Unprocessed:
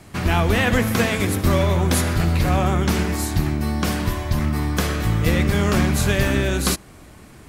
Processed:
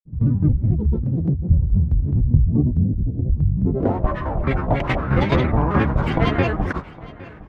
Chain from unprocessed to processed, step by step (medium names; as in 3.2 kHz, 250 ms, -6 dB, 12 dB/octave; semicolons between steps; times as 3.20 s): spectral selection erased 2.53–3.57 s, 600–2200 Hz; low-pass sweep 130 Hz -> 1.2 kHz, 3.50–4.10 s; granulator, grains 22 per s, pitch spread up and down by 12 st; tremolo saw down 4.7 Hz, depth 65%; on a send: feedback delay 811 ms, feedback 21%, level -20 dB; on the sum: trim +4.5 dB